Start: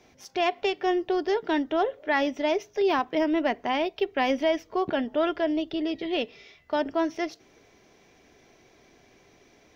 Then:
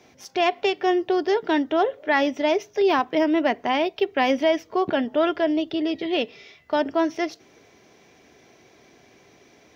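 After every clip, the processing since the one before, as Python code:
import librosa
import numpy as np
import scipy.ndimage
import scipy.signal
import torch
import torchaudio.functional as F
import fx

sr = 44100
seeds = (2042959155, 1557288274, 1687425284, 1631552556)

y = scipy.signal.sosfilt(scipy.signal.butter(2, 82.0, 'highpass', fs=sr, output='sos'), x)
y = y * 10.0 ** (4.0 / 20.0)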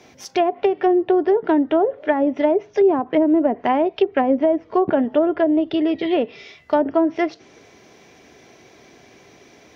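y = fx.env_lowpass_down(x, sr, base_hz=590.0, full_db=-16.5)
y = y * 10.0 ** (5.5 / 20.0)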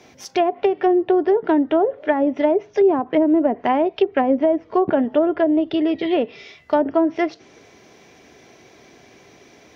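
y = x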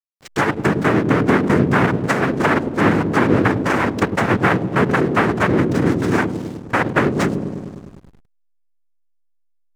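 y = fx.noise_vocoder(x, sr, seeds[0], bands=3)
y = fx.echo_wet_lowpass(y, sr, ms=102, feedback_pct=74, hz=450.0, wet_db=-3.5)
y = fx.backlash(y, sr, play_db=-27.5)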